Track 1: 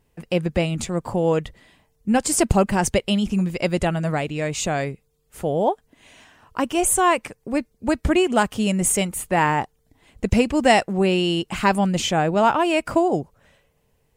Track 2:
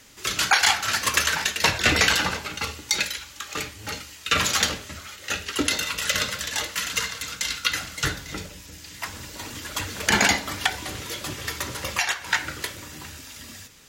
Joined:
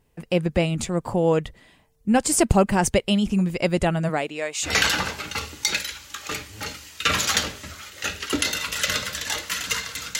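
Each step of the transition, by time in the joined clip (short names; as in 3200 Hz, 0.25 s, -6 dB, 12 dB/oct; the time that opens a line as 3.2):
track 1
4.08–4.78 HPF 180 Hz -> 1400 Hz
4.7 switch to track 2 from 1.96 s, crossfade 0.16 s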